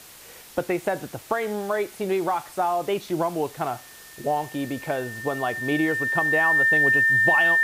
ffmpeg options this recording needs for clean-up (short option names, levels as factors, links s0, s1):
-af "bandreject=f=1800:w=30,afftdn=nr=23:nf=-45"